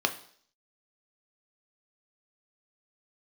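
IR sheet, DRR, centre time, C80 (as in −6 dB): 6.0 dB, 8 ms, 17.5 dB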